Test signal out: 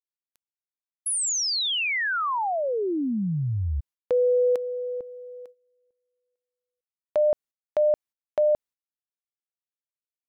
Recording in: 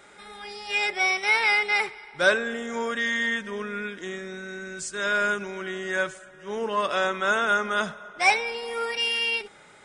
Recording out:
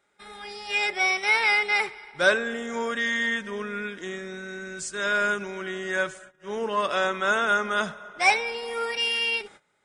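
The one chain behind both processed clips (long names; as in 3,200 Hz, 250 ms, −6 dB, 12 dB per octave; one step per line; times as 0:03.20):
noise gate −46 dBFS, range −19 dB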